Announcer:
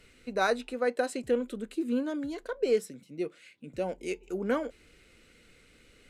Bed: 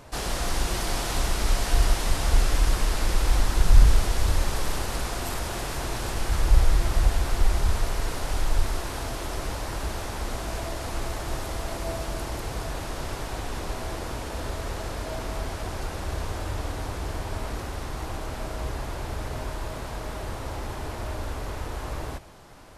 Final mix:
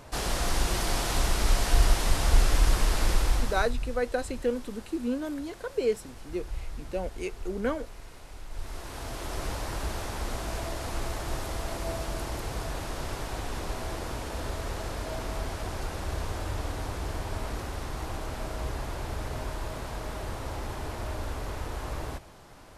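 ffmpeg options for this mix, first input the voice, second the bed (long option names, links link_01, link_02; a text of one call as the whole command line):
ffmpeg -i stem1.wav -i stem2.wav -filter_complex "[0:a]adelay=3150,volume=-0.5dB[link_01];[1:a]volume=15.5dB,afade=type=out:start_time=3.1:duration=0.65:silence=0.133352,afade=type=in:start_time=8.49:duration=0.96:silence=0.158489[link_02];[link_01][link_02]amix=inputs=2:normalize=0" out.wav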